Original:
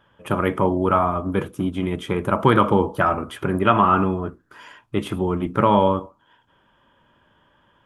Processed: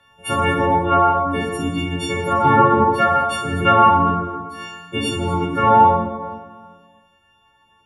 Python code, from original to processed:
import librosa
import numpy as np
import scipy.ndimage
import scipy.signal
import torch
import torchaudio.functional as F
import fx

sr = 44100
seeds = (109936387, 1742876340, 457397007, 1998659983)

y = fx.freq_snap(x, sr, grid_st=4)
y = fx.env_lowpass_down(y, sr, base_hz=1600.0, full_db=-10.0)
y = fx.dereverb_blind(y, sr, rt60_s=1.8)
y = fx.rev_plate(y, sr, seeds[0], rt60_s=1.6, hf_ratio=0.65, predelay_ms=0, drr_db=-3.0)
y = F.gain(torch.from_numpy(y), -1.0).numpy()